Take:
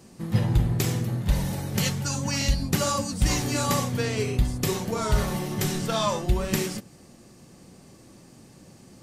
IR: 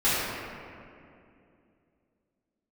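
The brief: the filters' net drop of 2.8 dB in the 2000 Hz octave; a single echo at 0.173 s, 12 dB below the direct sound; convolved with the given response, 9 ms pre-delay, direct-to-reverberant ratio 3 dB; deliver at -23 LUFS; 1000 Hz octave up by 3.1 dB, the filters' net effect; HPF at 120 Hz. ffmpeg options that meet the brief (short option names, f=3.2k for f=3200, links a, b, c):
-filter_complex "[0:a]highpass=120,equalizer=f=1k:t=o:g=5,equalizer=f=2k:t=o:g=-5,aecho=1:1:173:0.251,asplit=2[a][b];[1:a]atrim=start_sample=2205,adelay=9[c];[b][c]afir=irnorm=-1:irlink=0,volume=-19dB[d];[a][d]amix=inputs=2:normalize=0,volume=2.5dB"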